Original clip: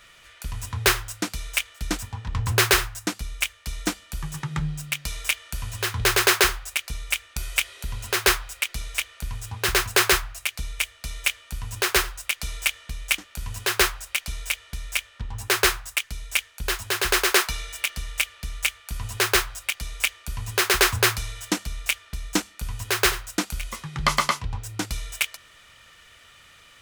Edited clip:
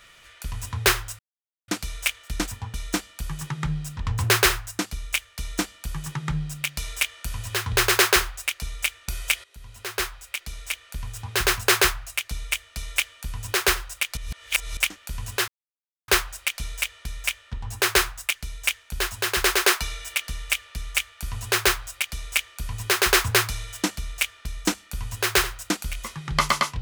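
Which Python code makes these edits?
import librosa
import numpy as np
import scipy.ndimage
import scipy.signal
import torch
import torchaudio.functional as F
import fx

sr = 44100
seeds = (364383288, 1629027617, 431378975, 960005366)

y = fx.edit(x, sr, fx.insert_silence(at_s=1.19, length_s=0.49),
    fx.duplicate(start_s=3.67, length_s=1.23, to_s=2.25),
    fx.fade_in_from(start_s=7.72, length_s=1.95, floor_db=-16.0),
    fx.reverse_span(start_s=12.45, length_s=0.6),
    fx.insert_silence(at_s=13.76, length_s=0.6), tone=tone)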